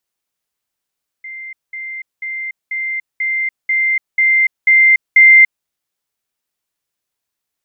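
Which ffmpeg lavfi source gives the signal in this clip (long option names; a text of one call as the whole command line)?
ffmpeg -f lavfi -i "aevalsrc='pow(10,(-27+3*floor(t/0.49))/20)*sin(2*PI*2090*t)*clip(min(mod(t,0.49),0.29-mod(t,0.49))/0.005,0,1)':duration=4.41:sample_rate=44100" out.wav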